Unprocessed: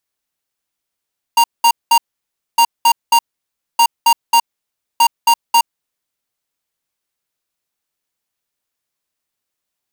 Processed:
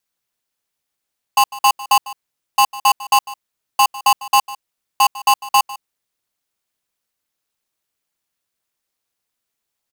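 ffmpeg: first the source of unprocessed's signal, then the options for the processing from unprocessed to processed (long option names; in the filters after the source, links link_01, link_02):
-f lavfi -i "aevalsrc='0.335*(2*lt(mod(933*t,1),0.5)-1)*clip(min(mod(mod(t,1.21),0.27),0.07-mod(mod(t,1.21),0.27))/0.005,0,1)*lt(mod(t,1.21),0.81)':duration=4.84:sample_rate=44100"
-filter_complex "[0:a]asplit=2[link_01][link_02];[link_02]asoftclip=type=hard:threshold=-18dB,volume=-6dB[link_03];[link_01][link_03]amix=inputs=2:normalize=0,aeval=exprs='val(0)*sin(2*PI*120*n/s)':channel_layout=same,aecho=1:1:150:0.126"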